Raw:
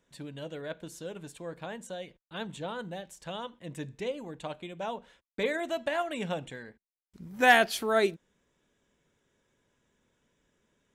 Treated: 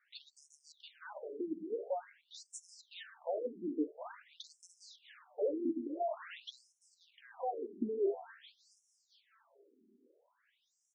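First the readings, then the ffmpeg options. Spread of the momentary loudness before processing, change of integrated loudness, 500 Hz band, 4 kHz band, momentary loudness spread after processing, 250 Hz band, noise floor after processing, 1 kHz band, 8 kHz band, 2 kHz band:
17 LU, -9.0 dB, -6.5 dB, -14.5 dB, 20 LU, -3.0 dB, -79 dBFS, -13.0 dB, -10.5 dB, -24.5 dB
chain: -af "lowshelf=f=390:g=-4,bandreject=f=67.56:t=h:w=4,bandreject=f=135.12:t=h:w=4,bandreject=f=202.68:t=h:w=4,bandreject=f=270.24:t=h:w=4,bandreject=f=337.8:t=h:w=4,bandreject=f=405.36:t=h:w=4,bandreject=f=472.92:t=h:w=4,bandreject=f=540.48:t=h:w=4,bandreject=f=608.04:t=h:w=4,bandreject=f=675.6:t=h:w=4,bandreject=f=743.16:t=h:w=4,bandreject=f=810.72:t=h:w=4,bandreject=f=878.28:t=h:w=4,bandreject=f=945.84:t=h:w=4,bandreject=f=1.0134k:t=h:w=4,bandreject=f=1.08096k:t=h:w=4,bandreject=f=1.14852k:t=h:w=4,bandreject=f=1.21608k:t=h:w=4,bandreject=f=1.28364k:t=h:w=4,bandreject=f=1.3512k:t=h:w=4,bandreject=f=1.41876k:t=h:w=4,bandreject=f=1.48632k:t=h:w=4,bandreject=f=1.55388k:t=h:w=4,bandreject=f=1.62144k:t=h:w=4,bandreject=f=1.689k:t=h:w=4,bandreject=f=1.75656k:t=h:w=4,bandreject=f=1.82412k:t=h:w=4,bandreject=f=1.89168k:t=h:w=4,bandreject=f=1.95924k:t=h:w=4,asoftclip=type=tanh:threshold=-20dB,acompressor=threshold=-34dB:ratio=4,asoftclip=type=hard:threshold=-40dB,tiltshelf=f=640:g=5.5,aecho=1:1:707|1414:0.178|0.0409,afftfilt=real='re*between(b*sr/1024,290*pow(7500/290,0.5+0.5*sin(2*PI*0.48*pts/sr))/1.41,290*pow(7500/290,0.5+0.5*sin(2*PI*0.48*pts/sr))*1.41)':imag='im*between(b*sr/1024,290*pow(7500/290,0.5+0.5*sin(2*PI*0.48*pts/sr))/1.41,290*pow(7500/290,0.5+0.5*sin(2*PI*0.48*pts/sr))*1.41)':win_size=1024:overlap=0.75,volume=10.5dB"

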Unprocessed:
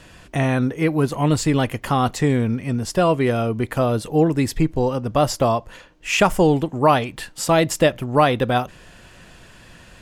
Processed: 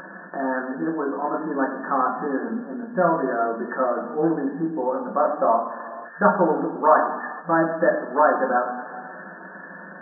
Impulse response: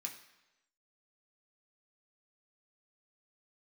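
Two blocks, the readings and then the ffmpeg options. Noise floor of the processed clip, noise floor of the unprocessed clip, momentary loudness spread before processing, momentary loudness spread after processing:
-40 dBFS, -47 dBFS, 6 LU, 16 LU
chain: -filter_complex "[0:a]bandreject=f=60:t=h:w=6,bandreject=f=120:t=h:w=6,bandreject=f=180:t=h:w=6,bandreject=f=240:t=h:w=6[a];[1:a]atrim=start_sample=2205,asetrate=32634,aresample=44100[b];[a][b]afir=irnorm=-1:irlink=0,acompressor=mode=upward:threshold=-24dB:ratio=2.5,afftfilt=real='re*between(b*sr/4096,170,1800)':imag='im*between(b*sr/4096,170,1800)':win_size=4096:overlap=0.75,adynamicequalizer=threshold=0.0355:dfrequency=1200:dqfactor=1.1:tfrequency=1200:tqfactor=1.1:attack=5:release=100:ratio=0.375:range=1.5:mode=boostabove:tftype=bell"

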